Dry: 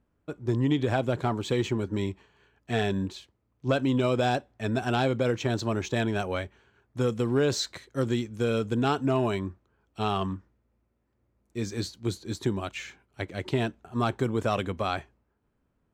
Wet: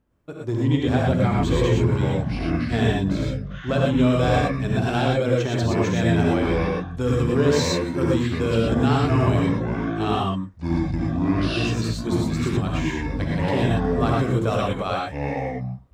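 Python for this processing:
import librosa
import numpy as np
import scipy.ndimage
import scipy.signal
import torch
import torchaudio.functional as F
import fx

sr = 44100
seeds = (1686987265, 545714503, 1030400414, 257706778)

y = fx.echo_pitch(x, sr, ms=149, semitones=-7, count=2, db_per_echo=-3.0)
y = fx.rev_gated(y, sr, seeds[0], gate_ms=140, shape='rising', drr_db=-2.0)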